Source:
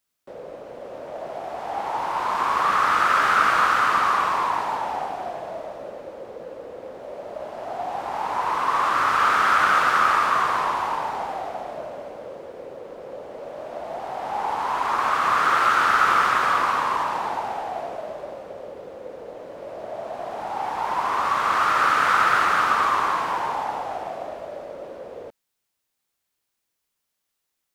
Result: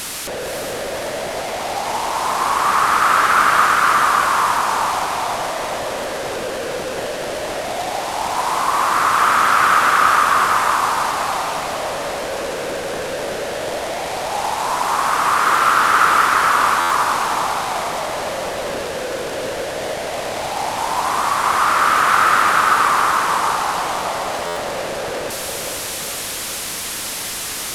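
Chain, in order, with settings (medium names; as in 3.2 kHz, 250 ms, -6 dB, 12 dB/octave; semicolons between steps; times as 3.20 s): one-bit delta coder 64 kbps, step -23.5 dBFS; echo that smears into a reverb 472 ms, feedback 48%, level -5 dB; buffer glitch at 16.80/24.46 s, samples 512, times 8; trim +3.5 dB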